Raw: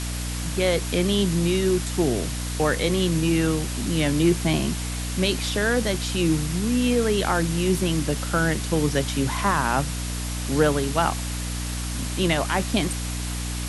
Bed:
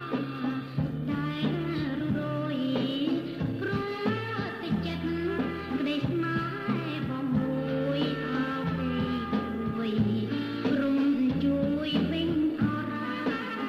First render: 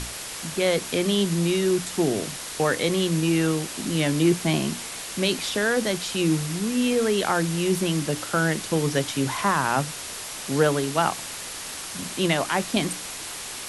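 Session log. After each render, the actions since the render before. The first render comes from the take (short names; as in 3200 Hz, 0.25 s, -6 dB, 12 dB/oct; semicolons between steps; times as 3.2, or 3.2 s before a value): notches 60/120/180/240/300 Hz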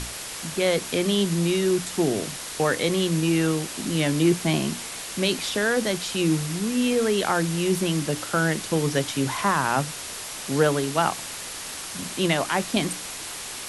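nothing audible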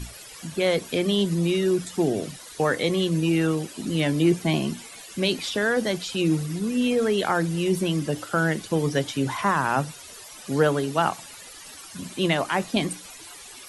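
denoiser 14 dB, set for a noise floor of -35 dBFS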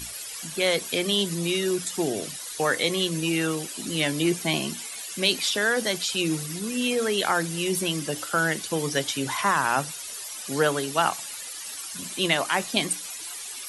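tilt +2.5 dB/oct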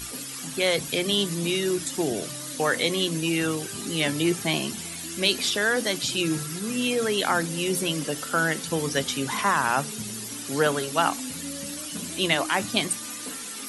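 add bed -11.5 dB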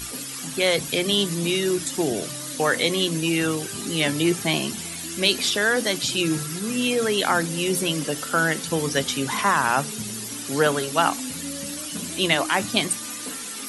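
gain +2.5 dB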